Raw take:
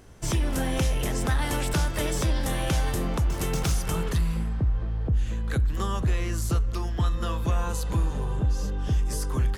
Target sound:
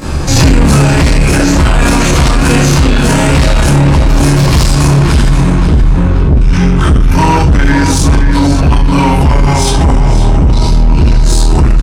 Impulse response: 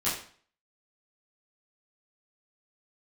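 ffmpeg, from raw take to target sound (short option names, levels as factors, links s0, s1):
-filter_complex "[1:a]atrim=start_sample=2205[s0];[0:a][s0]afir=irnorm=-1:irlink=0,asetrate=35721,aresample=44100,acontrast=89,asoftclip=type=tanh:threshold=0.316,asplit=2[s1][s2];[s2]adelay=531,lowpass=f=4600:p=1,volume=0.447,asplit=2[s3][s4];[s4]adelay=531,lowpass=f=4600:p=1,volume=0.35,asplit=2[s5][s6];[s6]adelay=531,lowpass=f=4600:p=1,volume=0.35,asplit=2[s7][s8];[s8]adelay=531,lowpass=f=4600:p=1,volume=0.35[s9];[s1][s3][s5][s7][s9]amix=inputs=5:normalize=0,alimiter=level_in=10:limit=0.891:release=50:level=0:latency=1,volume=0.891"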